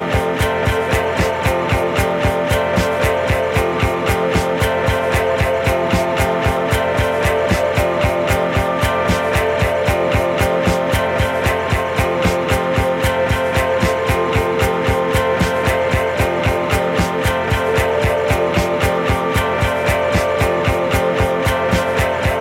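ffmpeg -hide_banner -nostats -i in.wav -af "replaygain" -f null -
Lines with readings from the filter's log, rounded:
track_gain = +0.1 dB
track_peak = 0.350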